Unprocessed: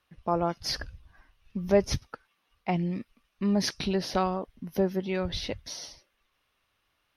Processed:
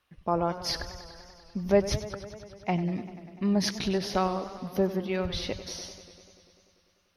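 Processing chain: modulated delay 98 ms, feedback 78%, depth 106 cents, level -14.5 dB

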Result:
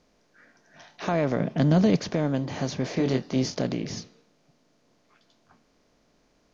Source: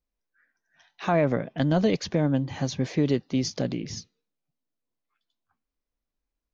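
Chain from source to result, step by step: spectral levelling over time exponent 0.6; 1.40–2.04 s: peaking EQ 170 Hz +8 dB 1.4 oct; 2.94–3.55 s: doubling 23 ms -5 dB; trim -4.5 dB

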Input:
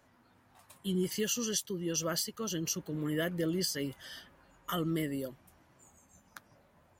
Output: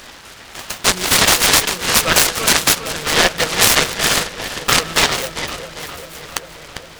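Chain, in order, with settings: graphic EQ 125/250/500/1000/2000/4000/8000 Hz -10/-10/+6/-3/+10/+7/-7 dB; in parallel at +3 dB: compression, threshold -45 dBFS, peak gain reduction 18.5 dB; on the sum: amplifier tone stack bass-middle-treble 10-0-10; on a send: filtered feedback delay 399 ms, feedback 78%, low-pass 1.5 kHz, level -6 dB; on the sum: loudness maximiser +23.5 dB; delay time shaken by noise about 1.3 kHz, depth 0.12 ms

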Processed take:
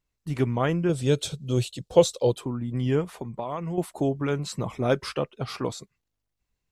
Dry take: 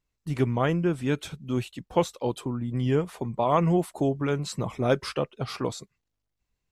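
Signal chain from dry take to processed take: 0.89–2.33 s: ten-band graphic EQ 125 Hz +7 dB, 250 Hz -5 dB, 500 Hz +10 dB, 1 kHz -5 dB, 2 kHz -6 dB, 4 kHz +9 dB, 8 kHz +9 dB; 3.15–3.78 s: compression 3:1, threshold -32 dBFS, peak gain reduction 11.5 dB

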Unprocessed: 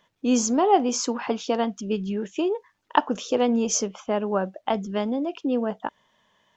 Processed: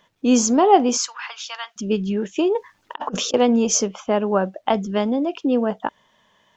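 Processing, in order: 0.97–1.76 s: high-pass 1.2 kHz 24 dB/octave; 2.55–3.34 s: compressor with a negative ratio -31 dBFS, ratio -0.5; trim +5 dB

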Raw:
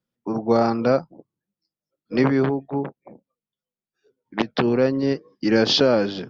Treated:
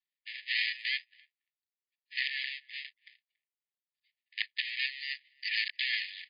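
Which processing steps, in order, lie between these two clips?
dead-time distortion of 0.28 ms; brick-wall FIR band-pass 1.7–5 kHz; speakerphone echo 280 ms, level -29 dB

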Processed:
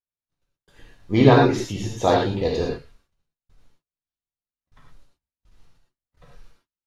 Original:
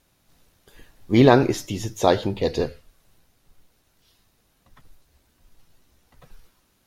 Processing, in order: gate -53 dBFS, range -39 dB; distance through air 54 m; gated-style reverb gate 140 ms flat, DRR -2.5 dB; trim -3 dB

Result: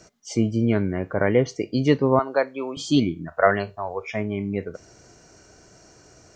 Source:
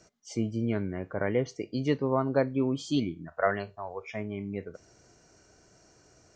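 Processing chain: 2.19–2.77 s: high-pass 610 Hz 12 dB/octave; trim +8.5 dB

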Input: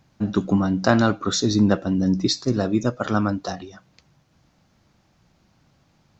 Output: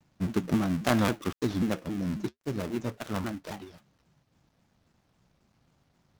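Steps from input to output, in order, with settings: dead-time distortion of 0.29 ms; 1.47–3.50 s: flange 1.8 Hz, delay 0.3 ms, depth 6.9 ms, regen -65%; vibrato with a chosen wave saw down 3.7 Hz, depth 250 cents; trim -6.5 dB

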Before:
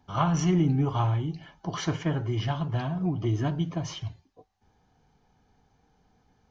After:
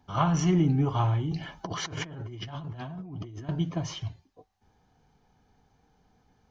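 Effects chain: 1.31–3.49 s: compressor with a negative ratio -38 dBFS, ratio -1

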